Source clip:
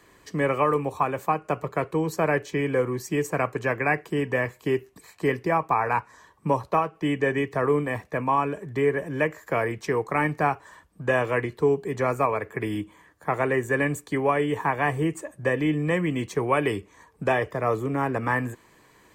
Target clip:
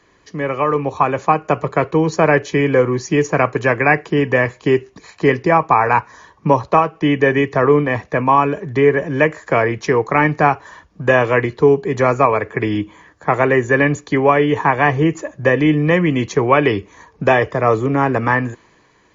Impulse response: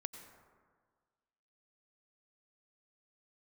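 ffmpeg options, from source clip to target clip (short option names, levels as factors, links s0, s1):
-af "dynaudnorm=f=120:g=13:m=3.76,volume=1.12" -ar 22050 -c:a mp2 -b:a 96k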